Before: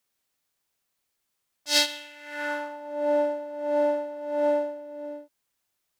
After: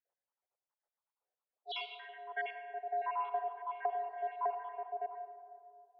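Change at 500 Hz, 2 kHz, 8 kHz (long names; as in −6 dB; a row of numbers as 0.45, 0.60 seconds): −15.5 dB, −11.0 dB, below −40 dB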